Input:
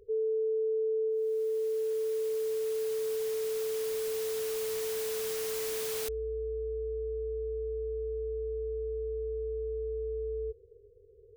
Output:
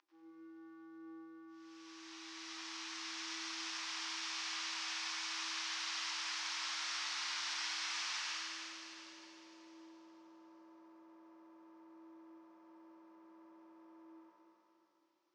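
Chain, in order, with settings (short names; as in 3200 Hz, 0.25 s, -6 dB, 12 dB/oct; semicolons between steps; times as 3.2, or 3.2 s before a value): octaver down 1 oct, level -3 dB; Chebyshev band-pass 1300–7700 Hz, order 3; compressor 4:1, threshold -51 dBFS, peak gain reduction 9 dB; flange 0.31 Hz, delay 3.6 ms, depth 1.9 ms, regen +82%; reverb RT60 2.4 s, pre-delay 64 ms, DRR -6.5 dB; speed mistake 45 rpm record played at 33 rpm; gain +9 dB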